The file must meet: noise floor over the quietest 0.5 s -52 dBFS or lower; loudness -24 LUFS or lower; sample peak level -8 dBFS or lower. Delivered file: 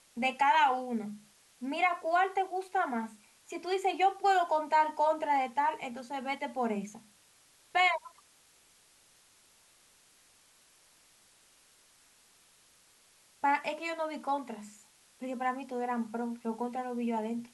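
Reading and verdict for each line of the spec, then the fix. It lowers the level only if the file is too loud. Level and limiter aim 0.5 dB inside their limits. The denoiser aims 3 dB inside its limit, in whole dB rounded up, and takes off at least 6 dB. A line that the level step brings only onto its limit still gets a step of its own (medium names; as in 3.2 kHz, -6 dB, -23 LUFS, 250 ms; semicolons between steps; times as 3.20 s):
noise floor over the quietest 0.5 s -64 dBFS: pass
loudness -31.5 LUFS: pass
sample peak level -16.0 dBFS: pass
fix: none needed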